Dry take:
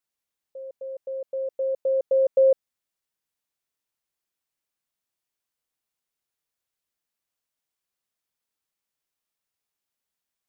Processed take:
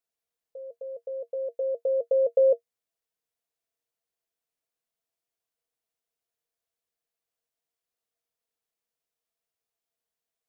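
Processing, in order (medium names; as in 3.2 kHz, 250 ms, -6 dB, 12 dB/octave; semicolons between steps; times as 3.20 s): small resonant body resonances 470/670 Hz, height 14 dB, ringing for 90 ms; trim -4.5 dB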